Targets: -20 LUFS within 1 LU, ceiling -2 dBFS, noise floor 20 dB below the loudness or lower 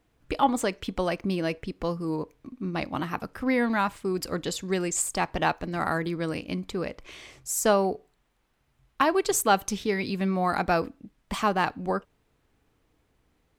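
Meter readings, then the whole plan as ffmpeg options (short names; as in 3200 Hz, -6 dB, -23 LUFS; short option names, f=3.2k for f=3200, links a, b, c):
loudness -27.5 LUFS; peak -8.0 dBFS; loudness target -20.0 LUFS
-> -af "volume=7.5dB,alimiter=limit=-2dB:level=0:latency=1"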